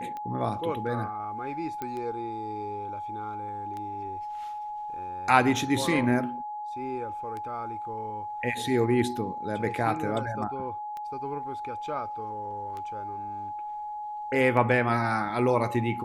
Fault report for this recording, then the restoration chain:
scratch tick 33 1/3 rpm −25 dBFS
whistle 840 Hz −33 dBFS
0:01.82: click −20 dBFS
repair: click removal
notch filter 840 Hz, Q 30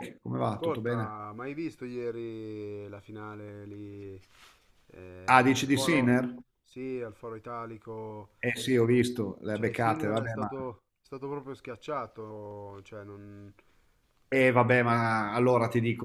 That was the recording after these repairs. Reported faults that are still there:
none of them is left

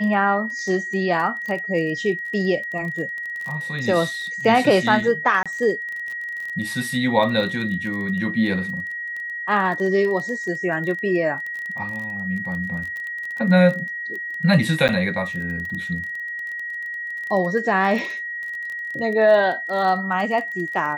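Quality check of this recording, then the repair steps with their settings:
surface crackle 21 per second −28 dBFS
whistle 1,900 Hz −27 dBFS
0:05.43–0:05.46: drop-out 26 ms
0:14.88–0:14.89: drop-out 8.7 ms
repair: click removal
notch filter 1,900 Hz, Q 30
repair the gap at 0:05.43, 26 ms
repair the gap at 0:14.88, 8.7 ms

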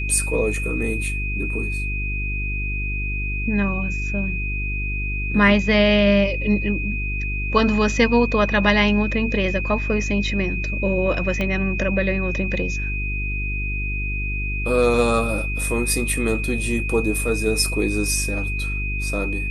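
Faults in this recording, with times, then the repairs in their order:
mains hum 50 Hz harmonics 8 −26 dBFS
whistle 2,500 Hz −27 dBFS
0:11.41: click −12 dBFS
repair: click removal
notch filter 2,500 Hz, Q 30
hum removal 50 Hz, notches 8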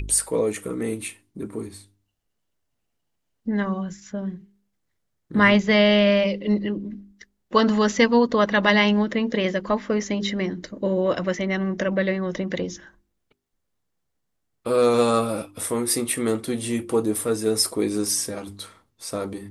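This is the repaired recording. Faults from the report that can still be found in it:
0:11.41: click

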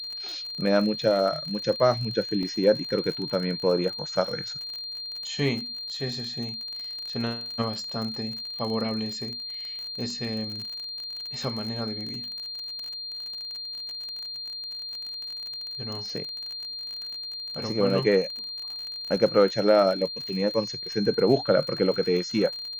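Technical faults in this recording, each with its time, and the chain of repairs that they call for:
surface crackle 41 per second −32 dBFS
whistle 4,200 Hz −33 dBFS
0:02.43: drop-out 2.3 ms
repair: click removal
notch filter 4,200 Hz, Q 30
repair the gap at 0:02.43, 2.3 ms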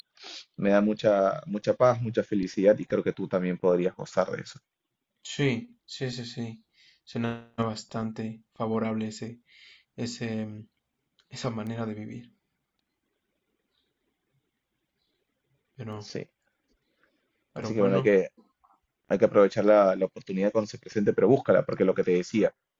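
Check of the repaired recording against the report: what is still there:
none of them is left

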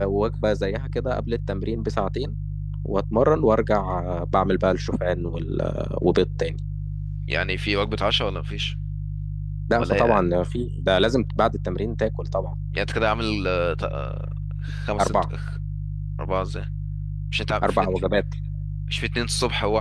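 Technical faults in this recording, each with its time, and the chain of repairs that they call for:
mains hum 50 Hz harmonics 3 −29 dBFS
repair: hum removal 50 Hz, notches 3

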